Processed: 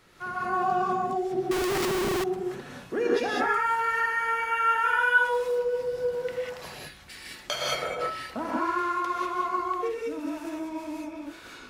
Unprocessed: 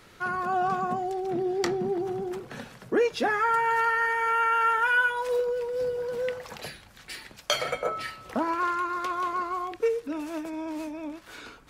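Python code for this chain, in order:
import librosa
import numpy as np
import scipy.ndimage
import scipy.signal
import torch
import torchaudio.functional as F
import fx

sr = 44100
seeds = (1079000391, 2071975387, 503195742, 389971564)

y = fx.rev_gated(x, sr, seeds[0], gate_ms=220, shape='rising', drr_db=-4.5)
y = fx.schmitt(y, sr, flips_db=-34.0, at=(1.51, 2.24))
y = F.gain(torch.from_numpy(y), -6.0).numpy()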